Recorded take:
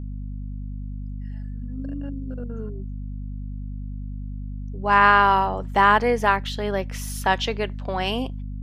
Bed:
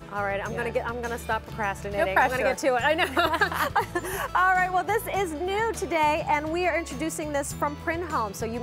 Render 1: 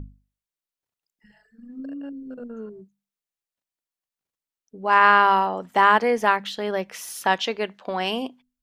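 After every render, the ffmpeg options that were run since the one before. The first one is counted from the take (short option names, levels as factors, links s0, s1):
-af "bandreject=f=50:t=h:w=6,bandreject=f=100:t=h:w=6,bandreject=f=150:t=h:w=6,bandreject=f=200:t=h:w=6,bandreject=f=250:t=h:w=6"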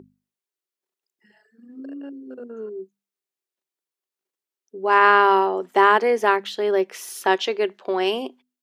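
-af "highpass=270,equalizer=f=380:t=o:w=0.3:g=13.5"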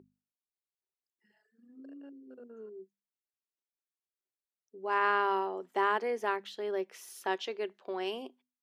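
-af "volume=0.211"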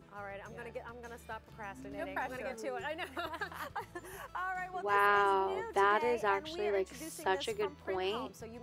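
-filter_complex "[1:a]volume=0.141[s0];[0:a][s0]amix=inputs=2:normalize=0"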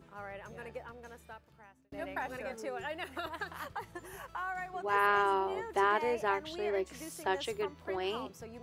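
-filter_complex "[0:a]asplit=2[s0][s1];[s0]atrim=end=1.92,asetpts=PTS-STARTPTS,afade=t=out:st=0.79:d=1.13[s2];[s1]atrim=start=1.92,asetpts=PTS-STARTPTS,afade=t=in:d=0.004:c=hsin[s3];[s2][s3]concat=n=2:v=0:a=1"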